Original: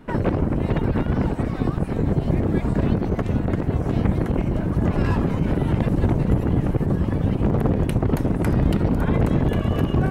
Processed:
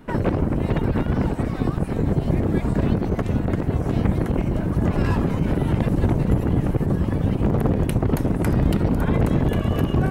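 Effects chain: high shelf 7400 Hz +6 dB

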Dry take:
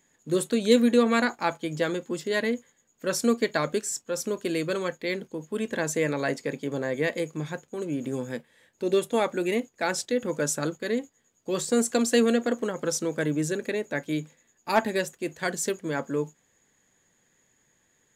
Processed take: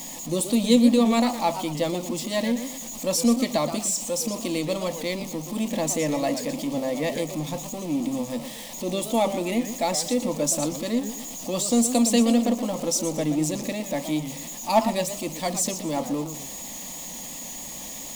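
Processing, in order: zero-crossing step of -33.5 dBFS; fixed phaser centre 410 Hz, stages 6; warbling echo 0.118 s, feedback 35%, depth 197 cents, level -10.5 dB; gain +4 dB

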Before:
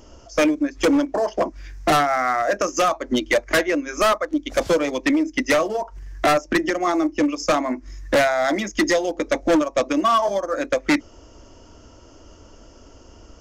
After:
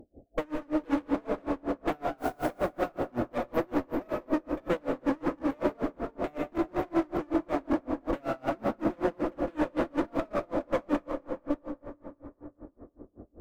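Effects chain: reverse delay 0.312 s, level -6 dB; FFT band-reject 850–12000 Hz; bell 260 Hz +12 dB 2.5 oct; one-sided clip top -29 dBFS, bottom -9.5 dBFS; 2.17–2.57 added noise white -39 dBFS; plate-style reverb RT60 4.2 s, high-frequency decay 0.5×, DRR 1.5 dB; dB-linear tremolo 5.3 Hz, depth 32 dB; gain -8.5 dB

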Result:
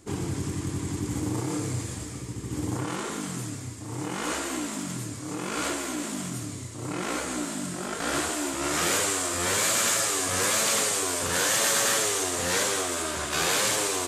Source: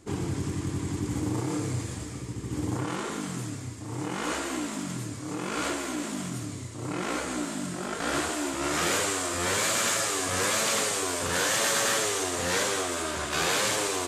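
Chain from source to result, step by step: high shelf 7100 Hz +6.5 dB

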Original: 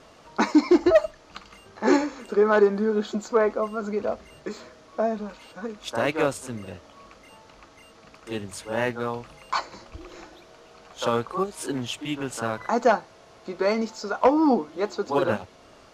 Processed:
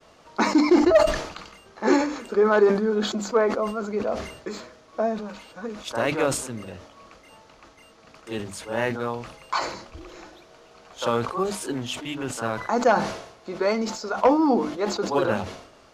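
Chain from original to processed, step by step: notches 50/100/150/200/250/300 Hz; expander -49 dBFS; sustainer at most 78 dB/s

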